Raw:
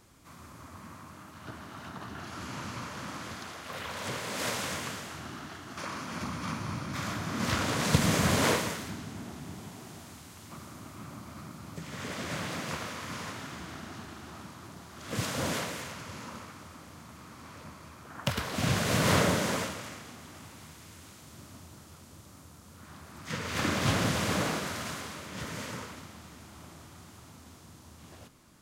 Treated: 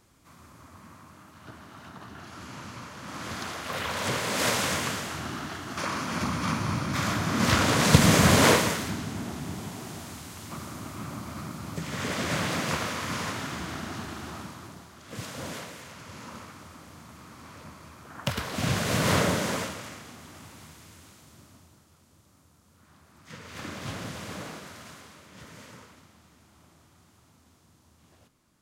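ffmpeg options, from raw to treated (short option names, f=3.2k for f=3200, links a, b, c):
-af "volume=13.5dB,afade=t=in:st=3.02:d=0.41:silence=0.334965,afade=t=out:st=14.26:d=0.79:silence=0.237137,afade=t=in:st=15.81:d=0.57:silence=0.473151,afade=t=out:st=20.61:d=1.25:silence=0.316228"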